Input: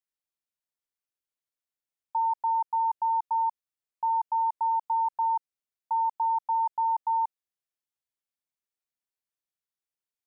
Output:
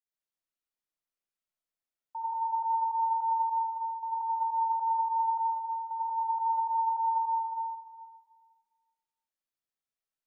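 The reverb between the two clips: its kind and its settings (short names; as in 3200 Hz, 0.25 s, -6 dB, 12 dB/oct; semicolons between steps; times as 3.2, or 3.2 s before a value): digital reverb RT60 1.7 s, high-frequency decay 0.55×, pre-delay 45 ms, DRR -9 dB; gain -10.5 dB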